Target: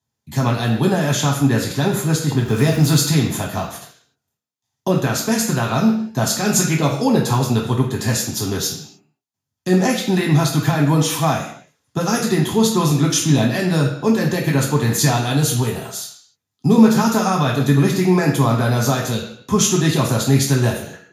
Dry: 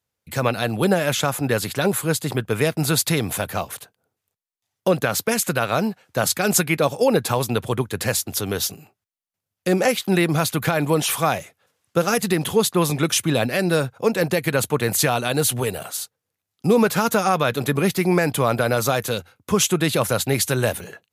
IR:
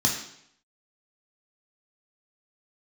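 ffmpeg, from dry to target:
-filter_complex "[0:a]asettb=1/sr,asplit=3[a][b][c];[a]atrim=end=2.414[d];[b]atrim=start=2.41:end=3.03,asetpts=PTS-STARTPTS,afade=t=in:d=0.004:c=qsin,afade=t=out:st=0.616:d=0.004:c=qsin,aeval=exprs='val(0)+0.5*0.0376*sgn(val(0))':c=same[e];[c]atrim=start=3.026[f];[d][e]acrossfade=d=0.004:c1=hsin:c2=qsin[g];[g][f]acrossfade=d=0.004:c1=qsin:c2=hsin[h];[1:a]atrim=start_sample=2205,afade=t=out:st=0.36:d=0.01,atrim=end_sample=16317[i];[h][i]afir=irnorm=-1:irlink=0,volume=-11dB"

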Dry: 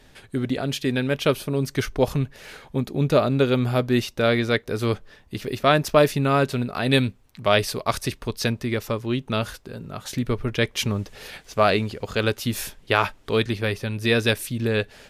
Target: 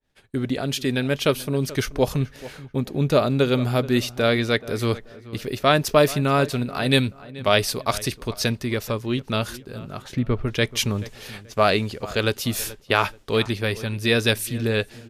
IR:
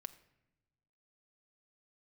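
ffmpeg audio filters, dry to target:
-filter_complex "[0:a]agate=range=-33dB:threshold=-38dB:ratio=3:detection=peak,asettb=1/sr,asplit=3[a][b][c];[a]atrim=end=10.024[d];[b]atrim=start=10.02:end=10.46,asetpts=PTS-STARTPTS,afade=t=in:d=0.004:c=qsin,afade=t=out:st=0.436:d=0.004:c=qsin,bass=f=250:g=3,treble=f=4k:g=-13[e];[c]atrim=start=10.456[f];[d][e]acrossfade=d=0.004:c1=hsin:c2=qsin[g];[g][f]acrossfade=d=0.004:c1=qsin:c2=hsin,asplit=2[h][i];[i]adelay=431,lowpass=f=2.5k:p=1,volume=-17.5dB,asplit=2[j][k];[k]adelay=431,lowpass=f=2.5k:p=1,volume=0.3,asplit=2[l][m];[m]adelay=431,lowpass=f=2.5k:p=1,volume=0.3[n];[h][j][l][n]amix=inputs=4:normalize=0,adynamicequalizer=threshold=0.0141:dfrequency=3300:dqfactor=0.7:tfrequency=3300:tqfactor=0.7:attack=5:release=100:ratio=0.375:range=2:mode=boostabove:tftype=highshelf"

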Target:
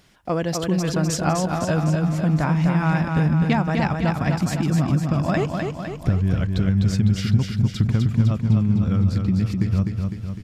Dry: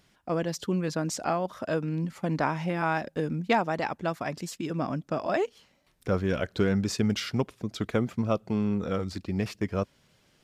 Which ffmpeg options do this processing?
-af "asubboost=boost=11.5:cutoff=140,acompressor=threshold=-25dB:ratio=6,aecho=1:1:253|506|759|1012|1265|1518|1771|2024:0.596|0.34|0.194|0.11|0.0629|0.0358|0.0204|0.0116,volume=7.5dB"

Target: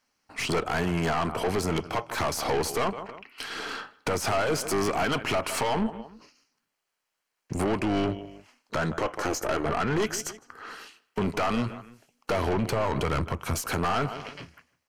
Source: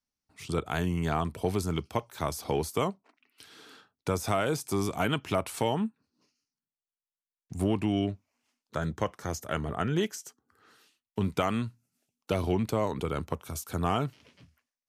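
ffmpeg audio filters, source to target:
-filter_complex "[0:a]asettb=1/sr,asplit=3[a][b][c];[a]atrim=end=8.974[d];[b]atrim=start=8.97:end=9.66,asetpts=PTS-STARTPTS,afade=t=in:d=0.004:c=qsin,afade=t=out:st=0.686:d=0.004:c=qsin,lowshelf=f=260:t=q:w=3:g=-7.5[e];[c]atrim=start=9.656[f];[d][e]acrossfade=d=0.004:c1=hsin:c2=qsin[g];[g][f]acrossfade=d=0.004:c1=qsin:c2=hsin,asplit=2[h][i];[i]adelay=158,lowpass=f=4.3k:p=1,volume=-23dB,asplit=2[j][k];[k]adelay=158,lowpass=f=4.3k:p=1,volume=0.3[l];[h][j][l]amix=inputs=3:normalize=0,asettb=1/sr,asplit=3[m][n][o];[m]atrim=end=12.324[p];[n]atrim=start=12.32:end=13.55,asetpts=PTS-STARTPTS,afade=t=in:d=0.004:c=qsin,afade=t=out:st=1.226:d=0.004:c=qsin,asubboost=boost=9.5:cutoff=180[q];[o]atrim=start=13.546[r];[p][q]acrossfade=d=0.004:c1=hsin:c2=qsin[s];[s][r]acrossfade=d=0.004:c1=qsin:c2=hsin,asplit=2[t][u];[u]acompressor=threshold=-36dB:ratio=6,volume=2.5dB[v];[t][v]amix=inputs=2:normalize=0,asplit=2[w][x];[x]highpass=f=720:p=1,volume=18dB,asoftclip=type=tanh:threshold=-10.5dB[y];[w][y]amix=inputs=2:normalize=0,lowpass=f=2.2k:p=1,volume=-6dB,tremolo=f=250:d=0.621,alimiter=limit=-16.5dB:level=0:latency=1:release=172,aeval=exprs='(tanh(25.1*val(0)+0.35)-tanh(0.35))/25.1':c=same,bandreject=f=3.6k:w=8.1,volume=6.5dB"

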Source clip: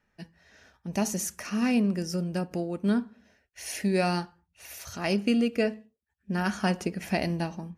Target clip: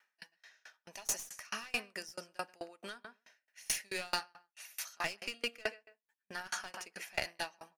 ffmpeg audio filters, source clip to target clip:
-filter_complex "[0:a]highpass=1.1k,asplit=2[a][b];[b]adelay=132,lowpass=f=2.3k:p=1,volume=-13.5dB,asplit=2[c][d];[d]adelay=132,lowpass=f=2.3k:p=1,volume=0.19[e];[c][e]amix=inputs=2:normalize=0[f];[a][f]amix=inputs=2:normalize=0,aeval=exprs='clip(val(0),-1,0.0188)':c=same,aeval=exprs='val(0)*pow(10,-32*if(lt(mod(4.6*n/s,1),2*abs(4.6)/1000),1-mod(4.6*n/s,1)/(2*abs(4.6)/1000),(mod(4.6*n/s,1)-2*abs(4.6)/1000)/(1-2*abs(4.6)/1000))/20)':c=same,volume=8dB"

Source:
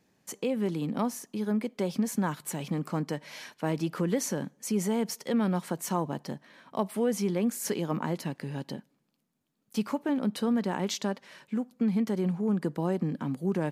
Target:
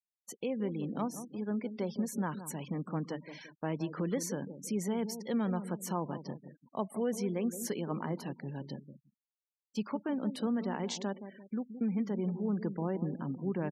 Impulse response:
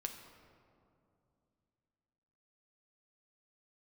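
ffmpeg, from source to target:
-filter_complex "[0:a]asplit=2[a][b];[b]adelay=171,lowpass=f=950:p=1,volume=-10dB,asplit=2[c][d];[d]adelay=171,lowpass=f=950:p=1,volume=0.45,asplit=2[e][f];[f]adelay=171,lowpass=f=950:p=1,volume=0.45,asplit=2[g][h];[h]adelay=171,lowpass=f=950:p=1,volume=0.45,asplit=2[i][j];[j]adelay=171,lowpass=f=950:p=1,volume=0.45[k];[a][c][e][g][i][k]amix=inputs=6:normalize=0,agate=range=-7dB:threshold=-48dB:ratio=16:detection=peak,afftfilt=real='re*gte(hypot(re,im),0.00891)':imag='im*gte(hypot(re,im),0.00891)':win_size=1024:overlap=0.75,volume=-5.5dB"

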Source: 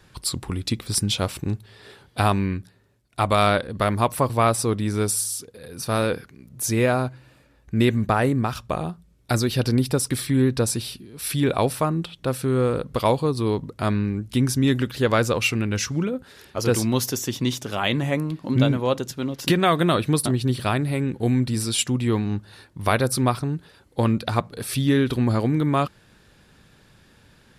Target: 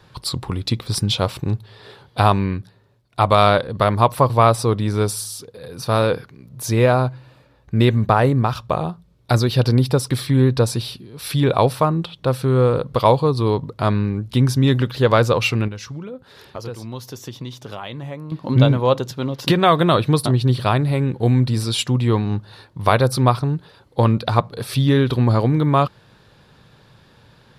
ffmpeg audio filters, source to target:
-filter_complex "[0:a]equalizer=f=125:t=o:w=1:g=9,equalizer=f=500:t=o:w=1:g=6,equalizer=f=1k:t=o:w=1:g=8,equalizer=f=4k:t=o:w=1:g=7,equalizer=f=8k:t=o:w=1:g=-4,asettb=1/sr,asplit=3[a][b][c];[a]atrim=end=15.684[d];[b]atrim=start=15.68:end=18.32,asetpts=PTS-STARTPTS,afade=t=in:d=0.004:c=qsin,afade=t=out:st=2.636:d=0.004:c=qsin,acompressor=threshold=-29dB:ratio=4[e];[c]atrim=start=18.316[f];[d][e]acrossfade=d=0.004:c1=hsin:c2=qsin[g];[g][f]acrossfade=d=0.004:c1=qsin:c2=hsin,volume=-2dB"

